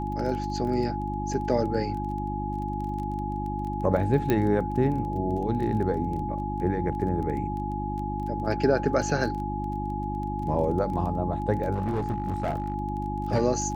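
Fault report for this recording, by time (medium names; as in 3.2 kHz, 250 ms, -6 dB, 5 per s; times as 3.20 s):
crackle 18 per s -34 dBFS
hum 50 Hz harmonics 7 -32 dBFS
whine 840 Hz -32 dBFS
4.30 s: pop -12 dBFS
11.74–12.74 s: clipped -23 dBFS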